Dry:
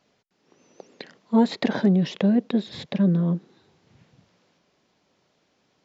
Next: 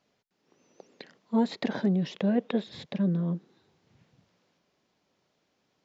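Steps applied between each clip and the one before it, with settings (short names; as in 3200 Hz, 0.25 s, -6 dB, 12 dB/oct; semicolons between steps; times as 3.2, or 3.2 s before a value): spectral gain 2.27–2.64, 430–3700 Hz +7 dB; gain -6.5 dB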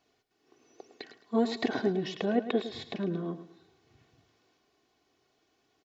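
comb 2.7 ms, depth 68%; on a send: feedback echo 0.108 s, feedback 30%, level -12 dB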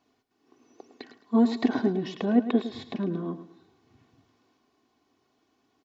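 fifteen-band EQ 100 Hz +4 dB, 250 Hz +11 dB, 1000 Hz +7 dB; gain -2 dB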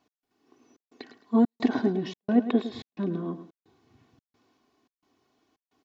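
step gate "x..xxxxxx" 197 bpm -60 dB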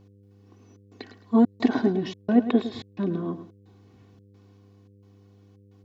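buzz 100 Hz, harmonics 5, -57 dBFS -6 dB/oct; gain +2.5 dB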